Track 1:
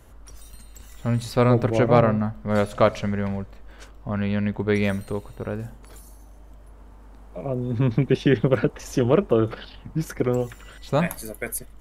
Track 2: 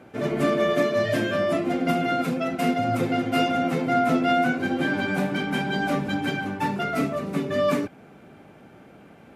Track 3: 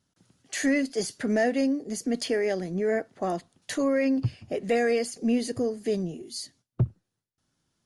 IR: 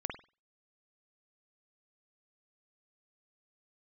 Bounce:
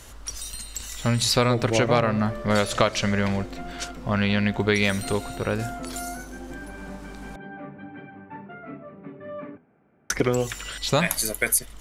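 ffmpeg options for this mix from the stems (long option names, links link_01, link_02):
-filter_complex "[0:a]equalizer=frequency=5500:width=0.34:gain=15,volume=2.5dB,asplit=3[link_01][link_02][link_03];[link_01]atrim=end=7.36,asetpts=PTS-STARTPTS,afade=type=out:start_time=7.356:duration=0.004:curve=hsin[link_04];[link_02]atrim=start=7.36:end=10.1,asetpts=PTS-STARTPTS,volume=0[link_05];[link_03]atrim=start=10.1,asetpts=PTS-STARTPTS,afade=type=in:duration=0.004:curve=hsin[link_06];[link_04][link_05][link_06]concat=n=3:v=0:a=1[link_07];[1:a]lowpass=frequency=2200:width=0.5412,lowpass=frequency=2200:width=1.3066,bandreject=frequency=82.05:width_type=h:width=4,bandreject=frequency=164.1:width_type=h:width=4,bandreject=frequency=246.15:width_type=h:width=4,bandreject=frequency=328.2:width_type=h:width=4,bandreject=frequency=410.25:width_type=h:width=4,bandreject=frequency=492.3:width_type=h:width=4,bandreject=frequency=574.35:width_type=h:width=4,bandreject=frequency=656.4:width_type=h:width=4,bandreject=frequency=738.45:width_type=h:width=4,bandreject=frequency=820.5:width_type=h:width=4,bandreject=frequency=902.55:width_type=h:width=4,bandreject=frequency=984.6:width_type=h:width=4,bandreject=frequency=1066.65:width_type=h:width=4,bandreject=frequency=1148.7:width_type=h:width=4,bandreject=frequency=1230.75:width_type=h:width=4,bandreject=frequency=1312.8:width_type=h:width=4,bandreject=frequency=1394.85:width_type=h:width=4,bandreject=frequency=1476.9:width_type=h:width=4,bandreject=frequency=1558.95:width_type=h:width=4,adelay=1700,volume=-14dB[link_08];[link_07][link_08]amix=inputs=2:normalize=0,acompressor=threshold=-17dB:ratio=5"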